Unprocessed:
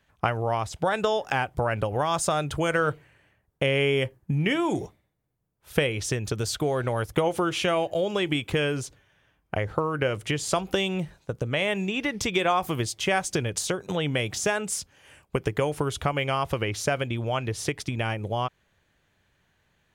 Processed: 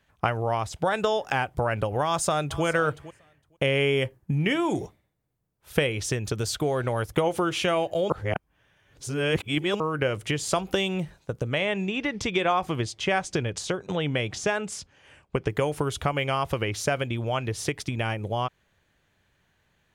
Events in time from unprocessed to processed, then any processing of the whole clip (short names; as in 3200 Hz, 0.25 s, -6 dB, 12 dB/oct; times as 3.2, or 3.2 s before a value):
2.04–2.64 echo throw 0.46 s, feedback 10%, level -16.5 dB
8.1–9.8 reverse
11.58–15.5 air absorption 68 m